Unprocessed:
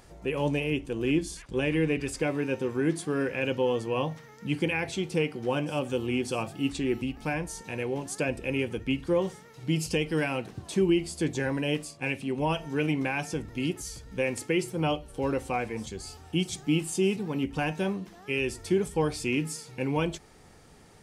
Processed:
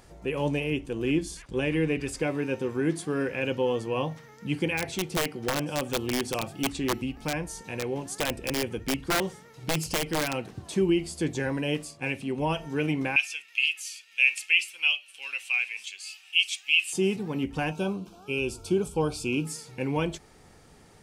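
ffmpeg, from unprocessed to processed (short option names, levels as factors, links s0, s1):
-filter_complex "[0:a]asplit=3[s0][s1][s2];[s0]afade=t=out:st=4.77:d=0.02[s3];[s1]aeval=exprs='(mod(10*val(0)+1,2)-1)/10':c=same,afade=t=in:st=4.77:d=0.02,afade=t=out:st=10.33:d=0.02[s4];[s2]afade=t=in:st=10.33:d=0.02[s5];[s3][s4][s5]amix=inputs=3:normalize=0,asettb=1/sr,asplit=3[s6][s7][s8];[s6]atrim=end=13.164[s9];[s7]atrim=start=13.16:end=16.93,asetpts=PTS-STARTPTS,afade=t=in:d=0.004:c=qsin,afade=t=out:st=3.766:d=0.004:c=qsin,highpass=f=2600:t=q:w=7.8[s10];[s8]atrim=start=16.926[s11];[s9][s10]acrossfade=d=0.004:c1=hsin:c2=qsin[s12];[s12][s11]acrossfade=d=0.004:c1=qsin:c2=hsin,asettb=1/sr,asplit=3[s13][s14][s15];[s13]atrim=end=17.714[s16];[s14]atrim=start=17.71:end=19.47,asetpts=PTS-STARTPTS,afade=t=in:d=0.004:c=qsin,afade=t=out:st=1.756:d=0.004:c=qsin,asuperstop=centerf=1900:order=8:qfactor=2.7[s17];[s15]atrim=start=19.466[s18];[s16][s17]acrossfade=d=0.004:c1=hsin:c2=qsin[s19];[s19][s18]acrossfade=d=0.004:c1=qsin:c2=hsin"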